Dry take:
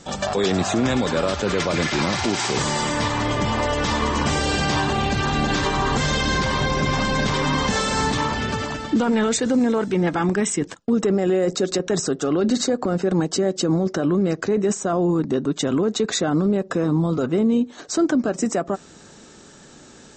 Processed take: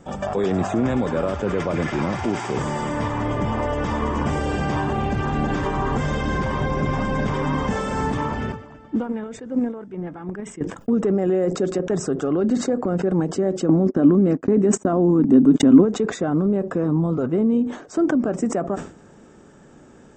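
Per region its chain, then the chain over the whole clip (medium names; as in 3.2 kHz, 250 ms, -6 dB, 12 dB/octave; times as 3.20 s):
8.52–10.61 s: gate -18 dBFS, range -13 dB + distance through air 55 m
13.69–15.85 s: peaking EQ 260 Hz +14 dB 0.41 oct + gate -24 dBFS, range -59 dB + upward compressor, threshold -13 dBFS
whole clip: peaking EQ 5.3 kHz -15 dB 2.5 oct; band-stop 4.1 kHz, Q 5.3; decay stretcher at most 120 dB/s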